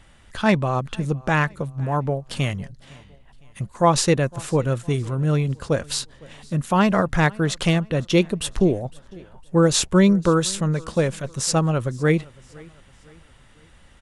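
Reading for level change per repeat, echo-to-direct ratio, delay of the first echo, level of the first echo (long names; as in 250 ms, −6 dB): −7.5 dB, −23.0 dB, 508 ms, −24.0 dB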